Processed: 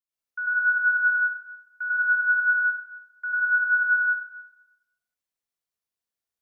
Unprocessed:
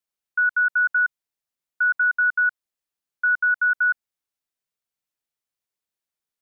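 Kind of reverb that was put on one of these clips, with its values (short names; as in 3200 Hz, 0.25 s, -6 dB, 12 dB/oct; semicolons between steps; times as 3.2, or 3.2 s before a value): plate-style reverb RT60 0.98 s, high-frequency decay 0.8×, pre-delay 80 ms, DRR -7.5 dB; gain -10.5 dB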